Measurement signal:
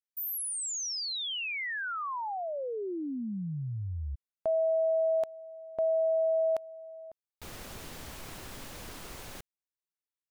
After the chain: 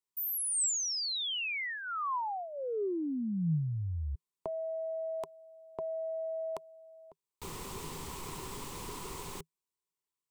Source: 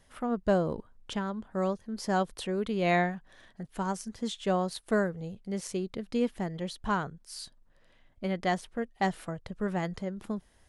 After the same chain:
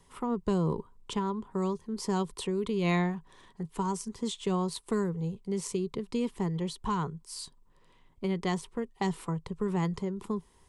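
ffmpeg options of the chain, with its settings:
-filter_complex "[0:a]equalizer=f=160:t=o:w=0.33:g=7,equalizer=f=400:t=o:w=0.33:g=10,equalizer=f=630:t=o:w=0.33:g=-11,equalizer=f=1k:t=o:w=0.33:g=12,equalizer=f=1.6k:t=o:w=0.33:g=-8,equalizer=f=8k:t=o:w=0.33:g=6,acrossover=split=230|2100[a][b][c];[b]acompressor=threshold=-38dB:ratio=6:attack=42:release=20:knee=2.83:detection=peak[d];[a][d][c]amix=inputs=3:normalize=0"

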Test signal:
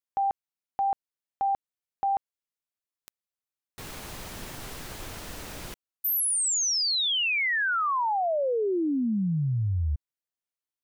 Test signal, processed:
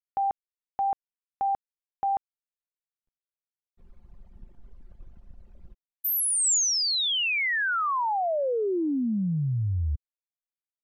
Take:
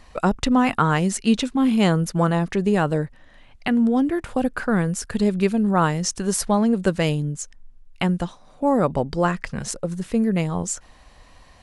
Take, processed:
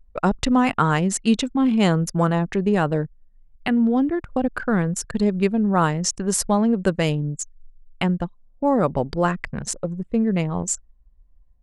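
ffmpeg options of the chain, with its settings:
-af "adynamicequalizer=threshold=0.00631:dfrequency=7300:dqfactor=3:tfrequency=7300:tqfactor=3:attack=5:release=100:ratio=0.375:range=2:mode=boostabove:tftype=bell,anlmdn=39.8"

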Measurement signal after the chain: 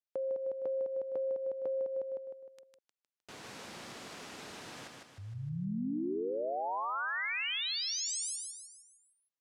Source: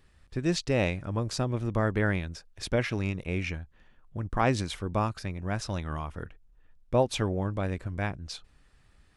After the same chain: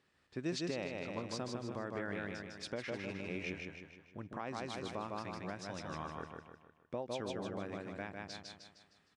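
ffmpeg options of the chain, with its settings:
-filter_complex "[0:a]highpass=190,lowpass=7.1k,asplit=2[a][b];[b]aecho=0:1:154|308|462|616|770|924:0.668|0.307|0.141|0.0651|0.0299|0.0138[c];[a][c]amix=inputs=2:normalize=0,acompressor=threshold=-24dB:ratio=6,alimiter=limit=-20.5dB:level=0:latency=1:release=489,volume=-7dB"

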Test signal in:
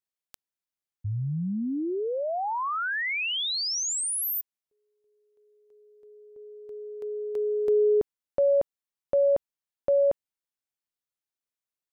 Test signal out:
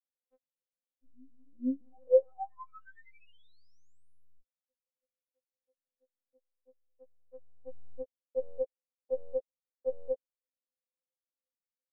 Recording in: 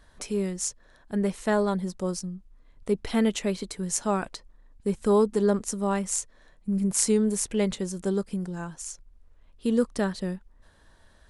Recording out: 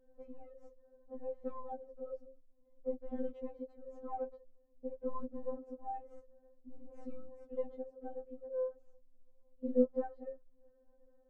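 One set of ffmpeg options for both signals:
-af "aeval=exprs='0.631*(cos(1*acos(clip(val(0)/0.631,-1,1)))-cos(1*PI/2))+0.0282*(cos(4*acos(clip(val(0)/0.631,-1,1)))-cos(4*PI/2))+0.0141*(cos(8*acos(clip(val(0)/0.631,-1,1)))-cos(8*PI/2))':c=same,lowpass=f=530:t=q:w=4.9,afftfilt=real='re*3.46*eq(mod(b,12),0)':imag='im*3.46*eq(mod(b,12),0)':win_size=2048:overlap=0.75,volume=-8.5dB"

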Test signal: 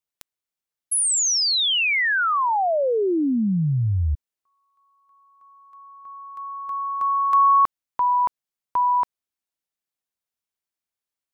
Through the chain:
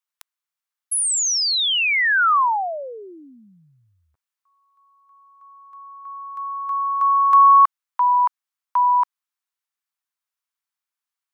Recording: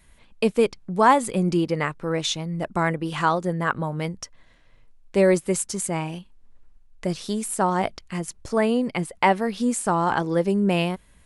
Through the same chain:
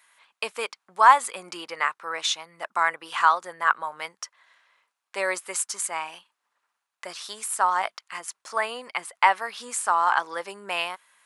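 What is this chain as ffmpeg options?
-af "highpass=f=1.1k:t=q:w=1.7"

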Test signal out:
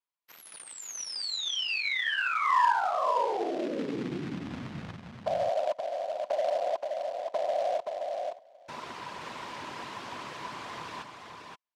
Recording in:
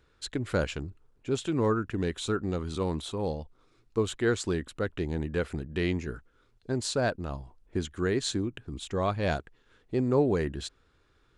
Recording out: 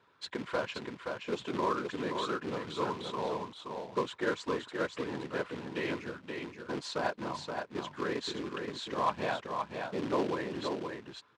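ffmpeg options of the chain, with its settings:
-filter_complex "[0:a]afftfilt=real='hypot(re,im)*cos(2*PI*random(0))':imag='hypot(re,im)*sin(2*PI*random(1))':win_size=512:overlap=0.75,equalizer=f=1k:w=5.8:g=12.5,asplit=2[a][b];[b]acompressor=threshold=-41dB:ratio=12,volume=2dB[c];[a][c]amix=inputs=2:normalize=0,acrusher=bits=3:mode=log:mix=0:aa=0.000001,highpass=120,lowpass=3.9k,lowshelf=f=210:g=-11.5,asplit=2[d][e];[e]aecho=0:1:524:0.562[f];[d][f]amix=inputs=2:normalize=0"

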